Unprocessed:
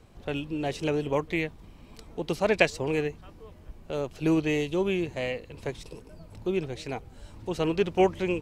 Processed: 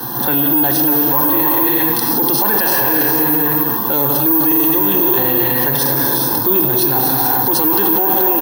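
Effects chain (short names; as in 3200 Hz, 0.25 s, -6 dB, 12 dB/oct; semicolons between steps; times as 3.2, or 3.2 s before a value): Chebyshev band-pass 130–6200 Hz, order 5; fixed phaser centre 640 Hz, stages 6; comb 1.2 ms, depth 73%; echo 0.239 s -14 dB; non-linear reverb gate 0.48 s flat, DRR 1.5 dB; careless resampling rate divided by 3×, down filtered, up zero stuff; maximiser +35.5 dB; core saturation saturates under 1100 Hz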